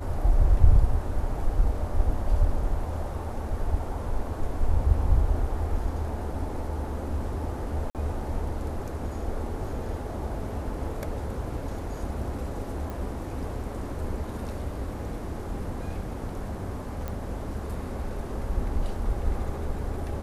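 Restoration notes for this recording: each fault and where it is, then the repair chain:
7.90–7.95 s: dropout 48 ms
12.90 s: pop
17.08 s: pop -20 dBFS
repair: de-click; interpolate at 7.90 s, 48 ms

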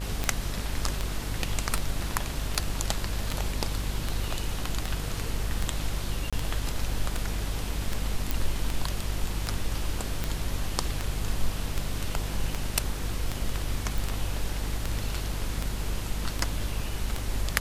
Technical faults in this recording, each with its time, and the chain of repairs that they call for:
buzz 50 Hz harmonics 38 -33 dBFS
tick 78 rpm
6.30–6.33 s: dropout 26 ms
8.31 s: pop
13.98 s: pop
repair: de-click; de-hum 50 Hz, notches 38; interpolate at 6.30 s, 26 ms

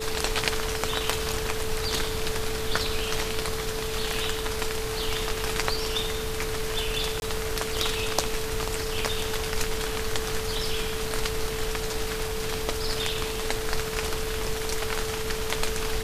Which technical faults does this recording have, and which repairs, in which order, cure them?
whine 440 Hz -32 dBFS
7.20–7.22 s: dropout 21 ms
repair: band-stop 440 Hz, Q 30; interpolate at 7.20 s, 21 ms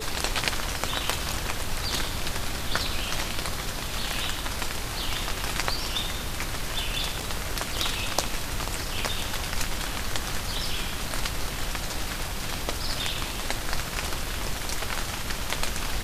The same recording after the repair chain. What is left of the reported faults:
nothing left

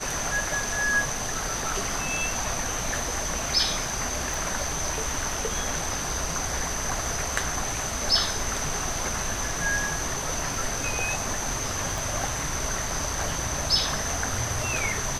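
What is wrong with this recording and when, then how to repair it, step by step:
4.34 s: pop
11.98 s: pop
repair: de-click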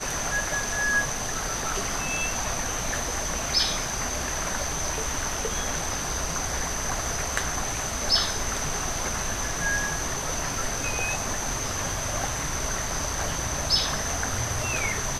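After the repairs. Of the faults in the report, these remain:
11.98 s: pop

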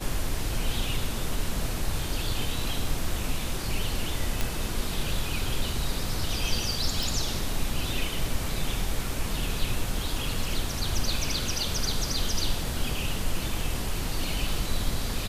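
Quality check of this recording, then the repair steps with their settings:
4.41 s: pop
7.03 s: pop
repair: de-click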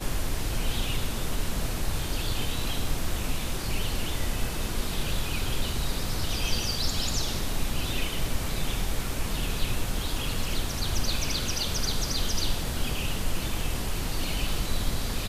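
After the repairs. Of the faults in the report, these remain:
nothing left

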